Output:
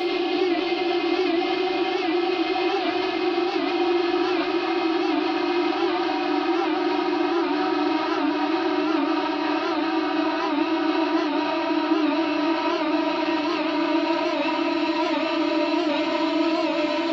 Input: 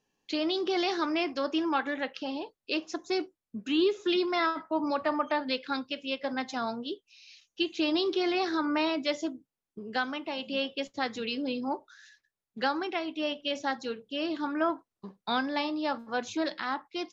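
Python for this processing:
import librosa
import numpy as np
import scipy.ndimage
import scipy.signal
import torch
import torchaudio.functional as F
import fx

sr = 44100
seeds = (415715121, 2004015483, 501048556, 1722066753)

p1 = fx.high_shelf(x, sr, hz=5700.0, db=-9.0)
p2 = p1 + fx.echo_split(p1, sr, split_hz=1100.0, low_ms=150, high_ms=308, feedback_pct=52, wet_db=-8, dry=0)
p3 = fx.vibrato(p2, sr, rate_hz=0.47, depth_cents=54.0)
p4 = fx.paulstretch(p3, sr, seeds[0], factor=23.0, window_s=1.0, from_s=8.24)
p5 = fx.over_compress(p4, sr, threshold_db=-35.0, ratio=-1.0)
p6 = p4 + F.gain(torch.from_numpy(p5), 0.5).numpy()
p7 = fx.room_shoebox(p6, sr, seeds[1], volume_m3=350.0, walls='mixed', distance_m=1.1)
p8 = fx.record_warp(p7, sr, rpm=78.0, depth_cents=100.0)
y = F.gain(torch.from_numpy(p8), -1.5).numpy()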